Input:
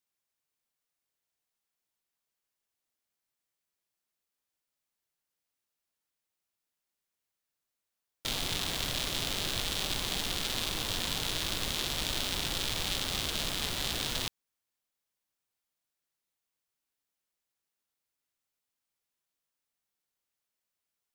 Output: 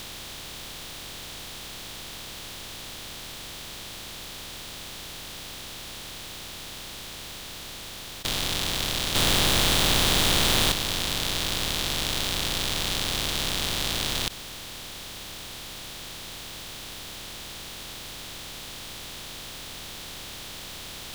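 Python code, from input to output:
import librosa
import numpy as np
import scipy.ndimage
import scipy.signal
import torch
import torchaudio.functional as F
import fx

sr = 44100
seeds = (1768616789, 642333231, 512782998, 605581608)

y = fx.bin_compress(x, sr, power=0.2)
y = fx.leveller(y, sr, passes=2, at=(9.15, 10.72))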